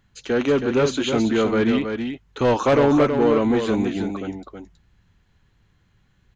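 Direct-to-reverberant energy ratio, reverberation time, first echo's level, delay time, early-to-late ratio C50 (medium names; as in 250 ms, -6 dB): no reverb, no reverb, -6.5 dB, 322 ms, no reverb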